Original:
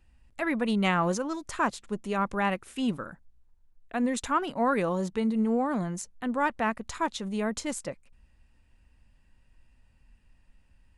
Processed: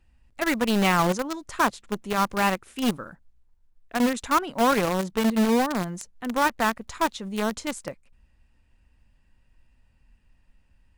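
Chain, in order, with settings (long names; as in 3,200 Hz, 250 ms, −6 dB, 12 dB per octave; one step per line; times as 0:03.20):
one scale factor per block 7 bits
high-shelf EQ 9,700 Hz −5.5 dB
in parallel at −3.5 dB: bit reduction 4 bits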